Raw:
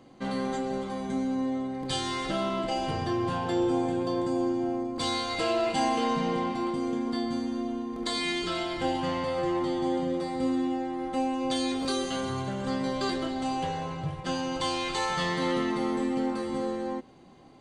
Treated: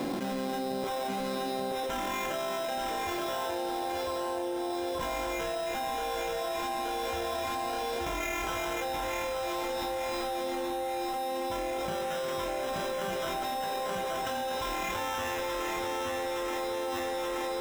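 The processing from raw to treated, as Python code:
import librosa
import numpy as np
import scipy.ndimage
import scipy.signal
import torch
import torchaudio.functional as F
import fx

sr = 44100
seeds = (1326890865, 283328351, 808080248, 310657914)

y = fx.highpass(x, sr, hz=fx.steps((0.0, 170.0), (0.84, 440.0)), slope=24)
y = fx.sample_hold(y, sr, seeds[0], rate_hz=4500.0, jitter_pct=0)
y = fx.high_shelf(y, sr, hz=6100.0, db=-4.5)
y = fx.notch(y, sr, hz=1200.0, q=14.0)
y = fx.doubler(y, sr, ms=32.0, db=-11)
y = fx.echo_feedback(y, sr, ms=877, feedback_pct=47, wet_db=-4)
y = fx.env_flatten(y, sr, amount_pct=100)
y = F.gain(torch.from_numpy(y), -7.5).numpy()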